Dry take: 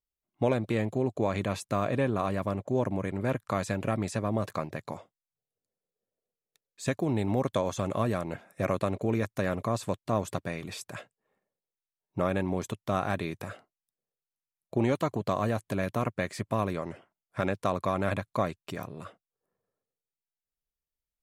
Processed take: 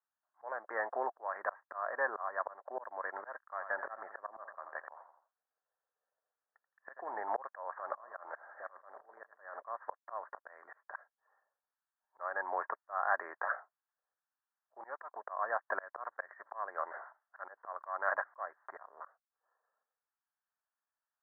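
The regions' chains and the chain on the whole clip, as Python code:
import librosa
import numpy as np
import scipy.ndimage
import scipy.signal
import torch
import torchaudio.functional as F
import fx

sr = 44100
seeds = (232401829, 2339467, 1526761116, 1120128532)

y = fx.chain(x, sr, fx.low_shelf(hz=140.0, db=8.5),
    fx.echo_feedback(ms=84, feedback_pct=32, wet_db=-15), at=(3.48, 7.22))
y = fx.chain(y, sr, fx.high_shelf(hz=6900.0, db=-11.0),
    fx.over_compress(threshold_db=-37.0, ratio=-1.0),
    fx.echo_feedback(ms=80, feedback_pct=54, wet_db=-11.5), at=(7.72, 9.6))
y = fx.chain(y, sr, fx.transient(attack_db=-4, sustain_db=-9),
    fx.sustainer(db_per_s=130.0), at=(16.06, 18.82))
y = scipy.signal.sosfilt(scipy.signal.butter(4, 790.0, 'highpass', fs=sr, output='sos'), y)
y = fx.auto_swell(y, sr, attack_ms=468.0)
y = scipy.signal.sosfilt(scipy.signal.butter(16, 1800.0, 'lowpass', fs=sr, output='sos'), y)
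y = y * 10.0 ** (10.5 / 20.0)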